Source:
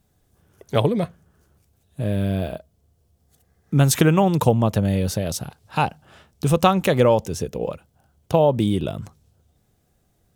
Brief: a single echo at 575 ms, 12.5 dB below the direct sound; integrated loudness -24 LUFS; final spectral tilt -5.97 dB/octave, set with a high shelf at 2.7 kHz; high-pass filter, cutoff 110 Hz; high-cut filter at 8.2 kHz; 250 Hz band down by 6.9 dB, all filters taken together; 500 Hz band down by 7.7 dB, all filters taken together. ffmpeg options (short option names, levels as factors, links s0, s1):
-af "highpass=110,lowpass=8200,equalizer=f=250:t=o:g=-8.5,equalizer=f=500:t=o:g=-7,highshelf=f=2700:g=-5.5,aecho=1:1:575:0.237,volume=1.33"